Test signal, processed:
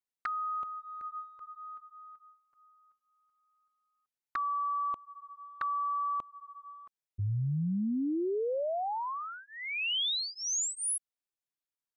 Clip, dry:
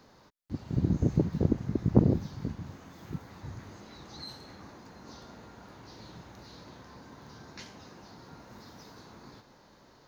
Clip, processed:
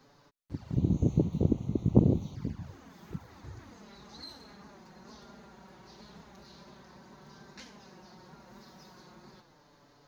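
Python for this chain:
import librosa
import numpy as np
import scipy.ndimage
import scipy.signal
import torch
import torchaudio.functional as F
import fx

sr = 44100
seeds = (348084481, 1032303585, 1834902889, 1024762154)

y = fx.env_flanger(x, sr, rest_ms=8.1, full_db=-28.5)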